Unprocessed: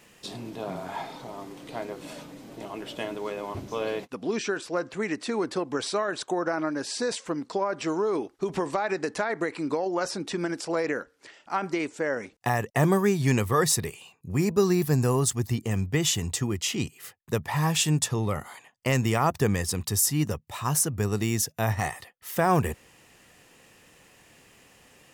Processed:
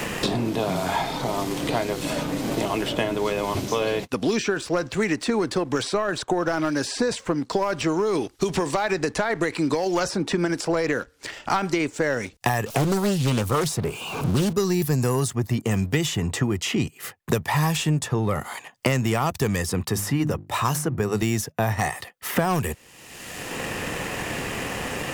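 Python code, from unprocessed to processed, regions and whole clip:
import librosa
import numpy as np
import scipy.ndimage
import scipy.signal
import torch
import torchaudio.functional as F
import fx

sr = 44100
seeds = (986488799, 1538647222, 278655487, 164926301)

y = fx.chain(x, sr, fx.zero_step(step_db=-36.0),
    fx.peak_eq(hz=1900.0, db=-13.5, octaves=0.27),
    fx.doppler_dist(depth_ms=0.57), at=(12.66, 14.53))
y = fx.chain(y, sr, fx.highpass(hz=79.0, slope=6),
    fx.hum_notches(base_hz=50, count=7), at=(19.89, 21.22))
y = fx.leveller(y, sr, passes=1)
y = fx.band_squash(y, sr, depth_pct=100)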